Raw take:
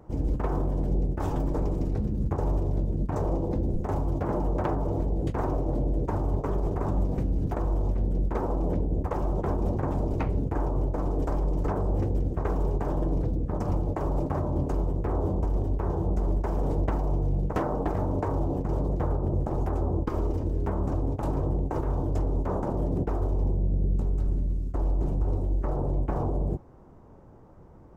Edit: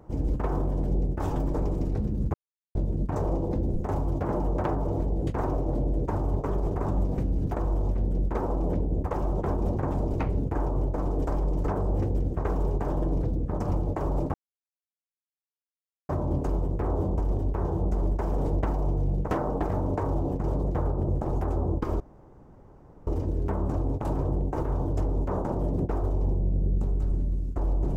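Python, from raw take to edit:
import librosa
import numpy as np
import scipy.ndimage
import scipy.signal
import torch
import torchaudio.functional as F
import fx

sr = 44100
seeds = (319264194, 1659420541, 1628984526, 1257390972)

y = fx.edit(x, sr, fx.silence(start_s=2.34, length_s=0.41),
    fx.insert_silence(at_s=14.34, length_s=1.75),
    fx.insert_room_tone(at_s=20.25, length_s=1.07), tone=tone)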